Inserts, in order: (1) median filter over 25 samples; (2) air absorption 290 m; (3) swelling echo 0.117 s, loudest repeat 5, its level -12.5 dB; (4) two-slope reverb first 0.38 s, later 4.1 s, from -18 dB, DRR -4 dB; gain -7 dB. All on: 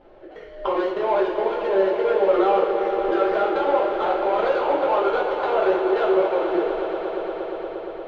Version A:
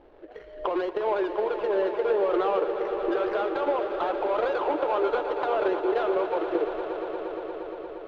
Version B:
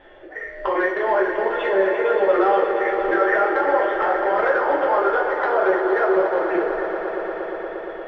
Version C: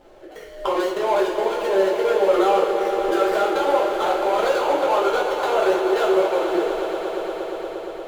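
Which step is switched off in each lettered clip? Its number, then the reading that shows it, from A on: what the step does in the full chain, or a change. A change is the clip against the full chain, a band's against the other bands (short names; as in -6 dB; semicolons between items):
4, echo-to-direct 6.5 dB to -3.0 dB; 1, 2 kHz band +8.5 dB; 2, 4 kHz band +5.5 dB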